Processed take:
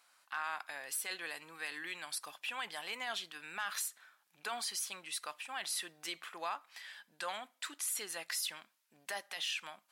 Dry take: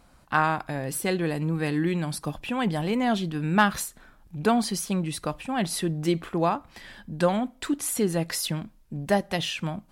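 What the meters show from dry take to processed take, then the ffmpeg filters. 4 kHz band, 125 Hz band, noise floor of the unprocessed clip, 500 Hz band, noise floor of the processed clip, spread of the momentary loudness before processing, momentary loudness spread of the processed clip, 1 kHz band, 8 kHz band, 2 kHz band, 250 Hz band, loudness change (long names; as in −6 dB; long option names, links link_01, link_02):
−6.0 dB, below −40 dB, −57 dBFS, −22.0 dB, −76 dBFS, 9 LU, 7 LU, −15.0 dB, −6.0 dB, −9.0 dB, −32.5 dB, −13.0 dB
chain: -af "highpass=1400,asoftclip=type=tanh:threshold=-12.5dB,alimiter=level_in=1dB:limit=-24dB:level=0:latency=1:release=24,volume=-1dB,volume=-3dB"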